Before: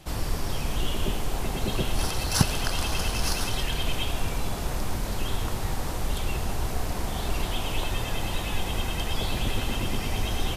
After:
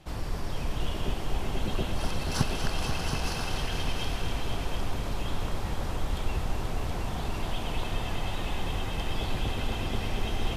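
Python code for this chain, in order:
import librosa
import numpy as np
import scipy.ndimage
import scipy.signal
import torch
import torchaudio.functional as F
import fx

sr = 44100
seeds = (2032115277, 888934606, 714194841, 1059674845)

p1 = fx.high_shelf(x, sr, hz=6300.0, db=-11.0)
p2 = 10.0 ** (-19.0 / 20.0) * np.tanh(p1 / 10.0 ** (-19.0 / 20.0))
p3 = p1 + F.gain(torch.from_numpy(p2), -11.5).numpy()
p4 = fx.echo_heads(p3, sr, ms=241, heads='all three', feedback_pct=47, wet_db=-9)
y = F.gain(torch.from_numpy(p4), -6.0).numpy()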